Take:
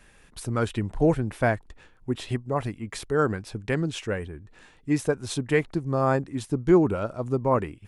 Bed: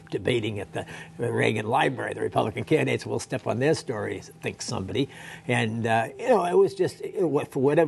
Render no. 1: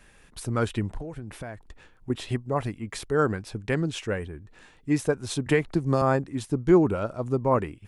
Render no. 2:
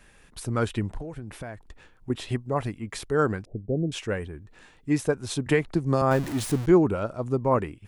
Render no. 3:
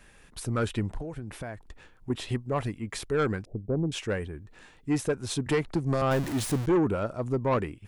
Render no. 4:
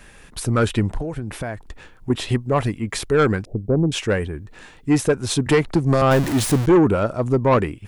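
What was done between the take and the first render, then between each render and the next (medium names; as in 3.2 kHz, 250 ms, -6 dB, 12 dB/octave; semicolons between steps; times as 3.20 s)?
0.97–2.10 s: compression 20:1, threshold -32 dBFS; 5.46–6.02 s: three bands compressed up and down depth 100%
3.45–3.92 s: steep low-pass 700 Hz 72 dB/octave; 6.11–6.66 s: jump at every zero crossing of -29.5 dBFS
saturation -19 dBFS, distortion -11 dB
trim +9.5 dB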